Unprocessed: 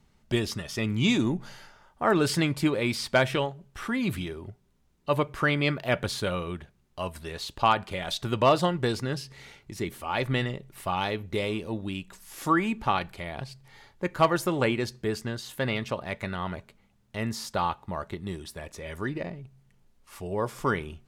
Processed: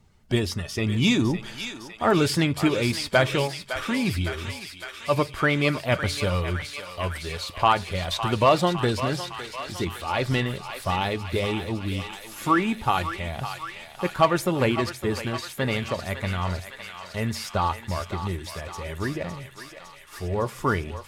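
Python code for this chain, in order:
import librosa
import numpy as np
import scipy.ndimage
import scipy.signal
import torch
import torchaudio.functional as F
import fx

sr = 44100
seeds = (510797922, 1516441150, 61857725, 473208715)

p1 = fx.spec_quant(x, sr, step_db=15)
p2 = fx.peak_eq(p1, sr, hz=88.0, db=10.5, octaves=0.27)
p3 = p2 + fx.echo_thinned(p2, sr, ms=558, feedback_pct=81, hz=900.0, wet_db=-8, dry=0)
y = p3 * librosa.db_to_amplitude(3.0)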